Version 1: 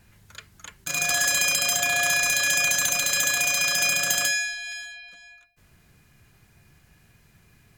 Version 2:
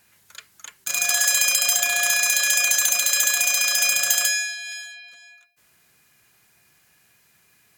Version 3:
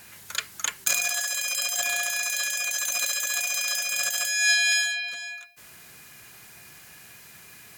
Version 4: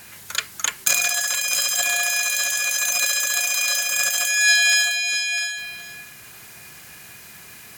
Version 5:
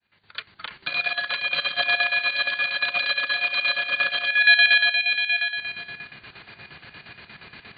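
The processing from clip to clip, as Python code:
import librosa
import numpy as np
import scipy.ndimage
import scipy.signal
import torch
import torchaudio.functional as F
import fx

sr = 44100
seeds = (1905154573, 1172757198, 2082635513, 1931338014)

y1 = fx.highpass(x, sr, hz=650.0, slope=6)
y1 = fx.high_shelf(y1, sr, hz=5700.0, db=7.0)
y2 = fx.over_compress(y1, sr, threshold_db=-30.0, ratio=-1.0)
y2 = y2 * 10.0 ** (3.5 / 20.0)
y3 = y2 + 10.0 ** (-8.0 / 20.0) * np.pad(y2, (int(661 * sr / 1000.0), 0))[:len(y2)]
y3 = y3 * 10.0 ** (5.0 / 20.0)
y4 = fx.fade_in_head(y3, sr, length_s=1.49)
y4 = fx.chopper(y4, sr, hz=8.5, depth_pct=65, duty_pct=60)
y4 = fx.brickwall_lowpass(y4, sr, high_hz=4700.0)
y4 = y4 * 10.0 ** (3.5 / 20.0)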